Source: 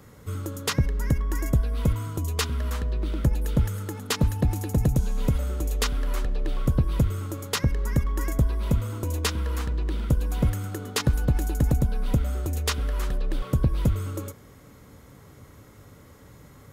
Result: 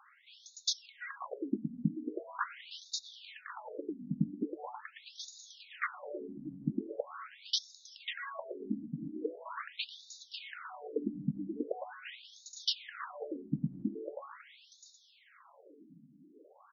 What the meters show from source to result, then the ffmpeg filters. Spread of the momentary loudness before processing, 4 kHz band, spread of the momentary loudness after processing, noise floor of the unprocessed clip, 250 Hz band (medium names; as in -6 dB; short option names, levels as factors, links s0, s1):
6 LU, -4.0 dB, 16 LU, -50 dBFS, -8.5 dB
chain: -af "asubboost=boost=6:cutoff=74,aecho=1:1:545|1090|1635|2180|2725:0.501|0.2|0.0802|0.0321|0.0128,afftfilt=real='re*between(b*sr/1024,210*pow(5100/210,0.5+0.5*sin(2*PI*0.42*pts/sr))/1.41,210*pow(5100/210,0.5+0.5*sin(2*PI*0.42*pts/sr))*1.41)':imag='im*between(b*sr/1024,210*pow(5100/210,0.5+0.5*sin(2*PI*0.42*pts/sr))/1.41,210*pow(5100/210,0.5+0.5*sin(2*PI*0.42*pts/sr))*1.41)':win_size=1024:overlap=0.75"